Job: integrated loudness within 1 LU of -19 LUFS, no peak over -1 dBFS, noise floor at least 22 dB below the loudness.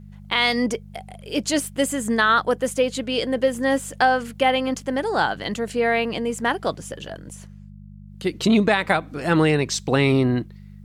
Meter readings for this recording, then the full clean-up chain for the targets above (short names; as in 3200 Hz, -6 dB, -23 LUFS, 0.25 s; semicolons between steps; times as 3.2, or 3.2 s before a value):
hum 50 Hz; harmonics up to 200 Hz; hum level -39 dBFS; loudness -21.5 LUFS; peak -6.5 dBFS; loudness target -19.0 LUFS
-> de-hum 50 Hz, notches 4; gain +2.5 dB